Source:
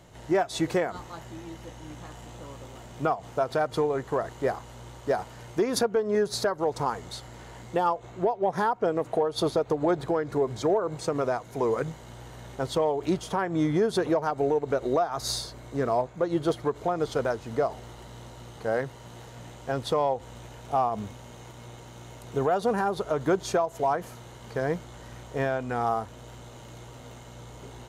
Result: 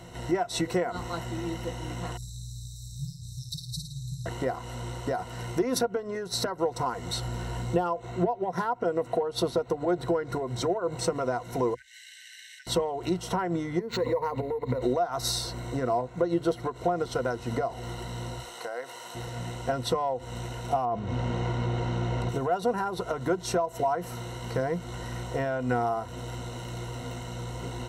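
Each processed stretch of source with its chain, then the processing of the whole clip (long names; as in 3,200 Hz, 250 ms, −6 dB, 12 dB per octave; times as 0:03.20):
0:02.17–0:04.26: linear-phase brick-wall band-stop 160–3,600 Hz + flutter between parallel walls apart 9.5 metres, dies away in 0.65 s
0:07.17–0:07.79: low-shelf EQ 160 Hz +7 dB + notch filter 2,000 Hz
0:11.74–0:12.67: high-shelf EQ 9,400 Hz −6.5 dB + downward compressor 3 to 1, threshold −37 dBFS + linear-phase brick-wall high-pass 1,500 Hz
0:13.79–0:14.82: EQ curve with evenly spaced ripples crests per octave 0.96, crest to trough 14 dB + downward compressor 12 to 1, threshold −28 dBFS + linearly interpolated sample-rate reduction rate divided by 4×
0:18.40–0:19.15: high-pass filter 560 Hz + high-shelf EQ 6,100 Hz +5 dB + downward compressor 5 to 1, threshold −39 dBFS
0:20.85–0:22.29: head-to-tape spacing loss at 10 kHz 21 dB + envelope flattener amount 50%
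whole clip: downward compressor 6 to 1, threshold −32 dBFS; EQ curve with evenly spaced ripples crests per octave 2, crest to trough 11 dB; level +5.5 dB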